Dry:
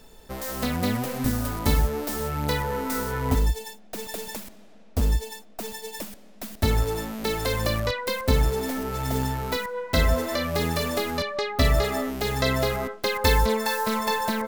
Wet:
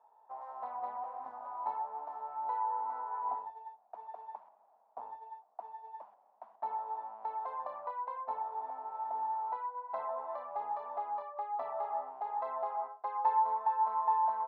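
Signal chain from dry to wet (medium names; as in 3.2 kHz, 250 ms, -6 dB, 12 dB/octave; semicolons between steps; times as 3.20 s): Butterworth band-pass 870 Hz, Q 3.1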